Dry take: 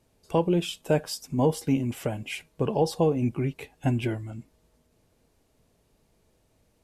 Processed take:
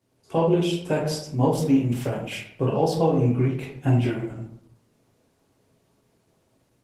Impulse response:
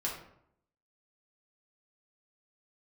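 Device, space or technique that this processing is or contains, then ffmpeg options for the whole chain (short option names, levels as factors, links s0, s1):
far-field microphone of a smart speaker: -filter_complex "[1:a]atrim=start_sample=2205[s0];[0:a][s0]afir=irnorm=-1:irlink=0,highpass=f=93:w=0.5412,highpass=f=93:w=1.3066,dynaudnorm=f=100:g=3:m=1.78,volume=0.596" -ar 48000 -c:a libopus -b:a 16k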